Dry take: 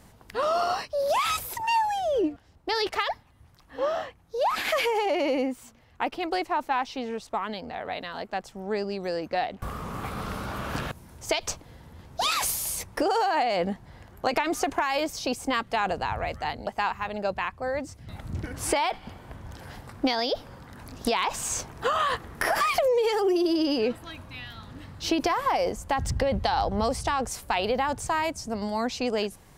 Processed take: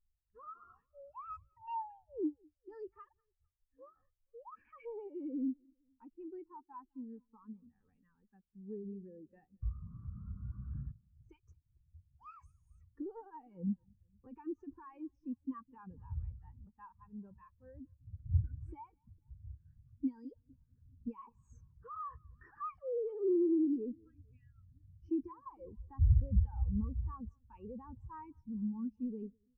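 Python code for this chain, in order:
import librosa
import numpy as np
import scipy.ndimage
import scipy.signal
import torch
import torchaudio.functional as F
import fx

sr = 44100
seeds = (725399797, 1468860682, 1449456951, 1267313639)

y = scipy.signal.sosfilt(scipy.signal.butter(2, 5800.0, 'lowpass', fs=sr, output='sos'), x)
y = fx.notch(y, sr, hz=2100.0, q=9.7)
y = fx.dynamic_eq(y, sr, hz=1700.0, q=1.2, threshold_db=-41.0, ratio=4.0, max_db=-6)
y = scipy.signal.sosfilt(scipy.signal.butter(4, 44.0, 'highpass', fs=sr, output='sos'), y)
y = fx.fixed_phaser(y, sr, hz=1600.0, stages=4)
y = fx.echo_multitap(y, sr, ms=(205, 456), db=(-15.0, -17.0))
y = fx.leveller(y, sr, passes=2)
y = fx.low_shelf(y, sr, hz=140.0, db=8.0)
y = fx.dmg_noise_colour(y, sr, seeds[0], colour='brown', level_db=-44.0)
y = fx.spectral_expand(y, sr, expansion=2.5)
y = y * 10.0 ** (-5.0 / 20.0)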